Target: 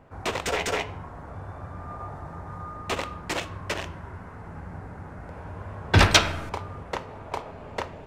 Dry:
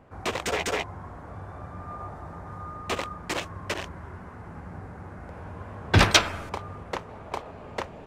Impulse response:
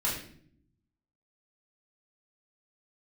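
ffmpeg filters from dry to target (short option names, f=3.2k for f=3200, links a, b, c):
-filter_complex "[0:a]asplit=2[a][b];[1:a]atrim=start_sample=2205,highshelf=f=12k:g=-11[c];[b][c]afir=irnorm=-1:irlink=0,volume=-17.5dB[d];[a][d]amix=inputs=2:normalize=0"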